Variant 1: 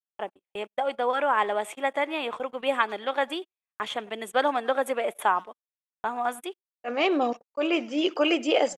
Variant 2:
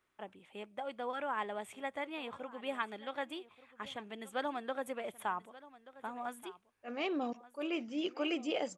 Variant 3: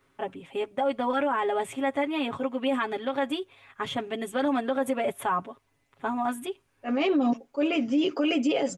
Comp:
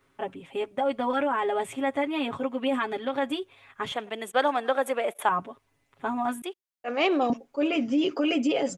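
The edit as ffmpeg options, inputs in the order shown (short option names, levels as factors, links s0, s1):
-filter_complex "[0:a]asplit=2[s0][s1];[2:a]asplit=3[s2][s3][s4];[s2]atrim=end=3.922[s5];[s0]atrim=start=3.918:end=5.292[s6];[s3]atrim=start=5.288:end=6.422[s7];[s1]atrim=start=6.418:end=7.302[s8];[s4]atrim=start=7.298[s9];[s5][s6]acrossfade=d=0.004:c1=hsin:c2=hsin[s10];[s10][s7]acrossfade=d=0.004:c1=hsin:c2=hsin[s11];[s11][s8]acrossfade=d=0.004:c1=hsin:c2=hsin[s12];[s12][s9]acrossfade=d=0.004:c1=hsin:c2=hsin"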